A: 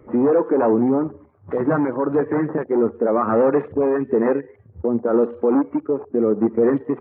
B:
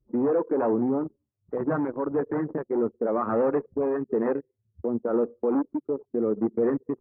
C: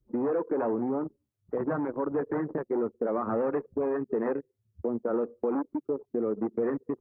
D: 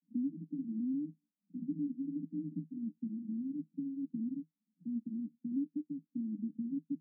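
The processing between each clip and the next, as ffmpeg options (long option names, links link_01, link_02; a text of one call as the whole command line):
ffmpeg -i in.wav -af "anlmdn=631,volume=-7dB" out.wav
ffmpeg -i in.wav -filter_complex "[0:a]acrossover=split=450|1200[link_01][link_02][link_03];[link_01]acompressor=threshold=-30dB:ratio=4[link_04];[link_02]acompressor=threshold=-31dB:ratio=4[link_05];[link_03]acompressor=threshold=-41dB:ratio=4[link_06];[link_04][link_05][link_06]amix=inputs=3:normalize=0" out.wav
ffmpeg -i in.wav -af "aeval=exprs='max(val(0),0)':channel_layout=same,asuperpass=centerf=220:order=20:qfactor=1.5,volume=2dB" out.wav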